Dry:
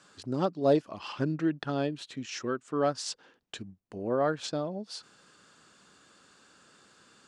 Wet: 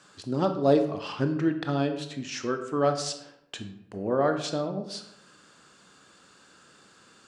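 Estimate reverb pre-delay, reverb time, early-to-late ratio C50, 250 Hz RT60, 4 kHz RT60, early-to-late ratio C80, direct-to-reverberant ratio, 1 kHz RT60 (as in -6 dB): 20 ms, 0.75 s, 9.5 dB, 0.95 s, 0.50 s, 12.0 dB, 6.5 dB, 0.75 s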